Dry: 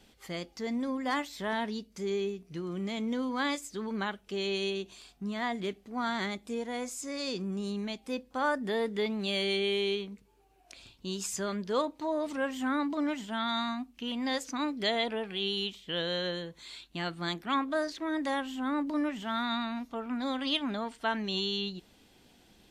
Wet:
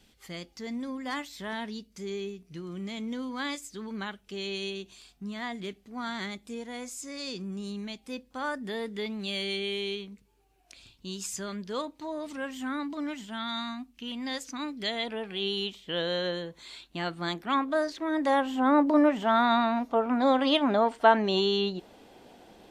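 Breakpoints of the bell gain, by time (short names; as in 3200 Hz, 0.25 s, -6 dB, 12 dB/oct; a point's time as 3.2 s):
bell 630 Hz 2.5 oct
14.96 s -5 dB
15.44 s +4 dB
18.07 s +4 dB
18.59 s +14.5 dB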